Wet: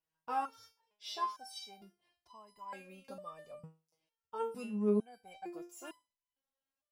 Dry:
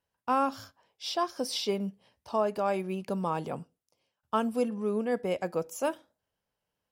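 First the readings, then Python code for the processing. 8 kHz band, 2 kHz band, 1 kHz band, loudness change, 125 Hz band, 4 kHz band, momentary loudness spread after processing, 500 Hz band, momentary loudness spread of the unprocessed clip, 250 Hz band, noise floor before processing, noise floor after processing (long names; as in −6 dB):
−12.0 dB, −11.5 dB, −8.5 dB, −8.0 dB, −9.0 dB, −11.0 dB, 20 LU, −10.5 dB, 9 LU, −7.5 dB, below −85 dBFS, below −85 dBFS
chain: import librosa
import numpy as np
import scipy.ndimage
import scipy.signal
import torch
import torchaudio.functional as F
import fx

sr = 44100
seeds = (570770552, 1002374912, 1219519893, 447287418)

y = fx.resonator_held(x, sr, hz=2.2, low_hz=160.0, high_hz=1000.0)
y = y * 10.0 ** (4.0 / 20.0)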